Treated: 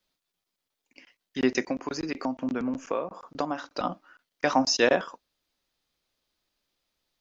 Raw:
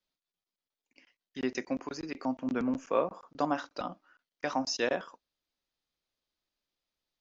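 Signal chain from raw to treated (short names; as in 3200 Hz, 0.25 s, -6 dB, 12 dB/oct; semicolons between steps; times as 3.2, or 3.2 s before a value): 1.62–3.83 compressor 6:1, threshold -35 dBFS, peak gain reduction 12.5 dB; gain +8.5 dB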